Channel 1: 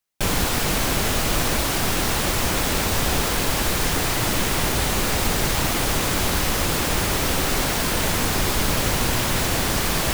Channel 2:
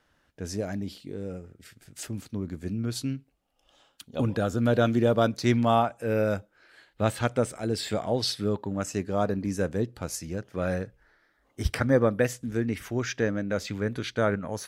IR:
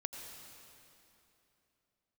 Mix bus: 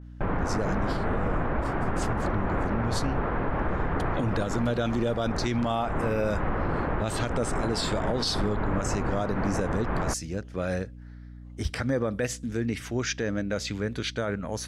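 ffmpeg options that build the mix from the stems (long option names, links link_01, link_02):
-filter_complex "[0:a]lowpass=frequency=1600:width=0.5412,lowpass=frequency=1600:width=1.3066,volume=-2.5dB[link_01];[1:a]adynamicequalizer=threshold=0.00794:dfrequency=2400:dqfactor=0.7:tfrequency=2400:tqfactor=0.7:attack=5:release=100:ratio=0.375:range=2.5:mode=boostabove:tftype=highshelf,volume=0.5dB,asplit=2[link_02][link_03];[link_03]apad=whole_len=446989[link_04];[link_01][link_04]sidechaincompress=threshold=-25dB:ratio=8:attack=26:release=263[link_05];[link_05][link_02]amix=inputs=2:normalize=0,lowpass=8900,aeval=exprs='val(0)+0.00794*(sin(2*PI*60*n/s)+sin(2*PI*2*60*n/s)/2+sin(2*PI*3*60*n/s)/3+sin(2*PI*4*60*n/s)/4+sin(2*PI*5*60*n/s)/5)':channel_layout=same,alimiter=limit=-17.5dB:level=0:latency=1:release=59"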